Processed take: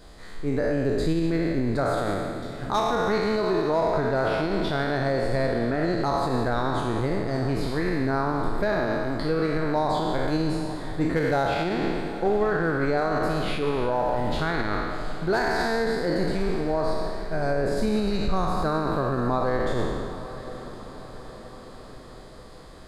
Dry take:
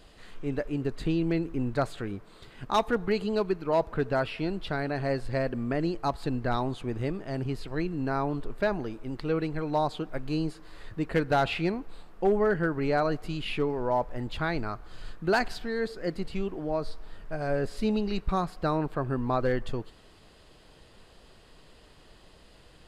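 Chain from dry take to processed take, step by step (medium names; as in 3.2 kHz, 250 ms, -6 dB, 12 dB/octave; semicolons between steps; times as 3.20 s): spectral sustain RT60 1.71 s; peak limiter -19.5 dBFS, peak gain reduction 10.5 dB; peaking EQ 2.8 kHz -13 dB 0.31 oct; echo that smears into a reverb 840 ms, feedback 58%, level -14 dB; trim +4 dB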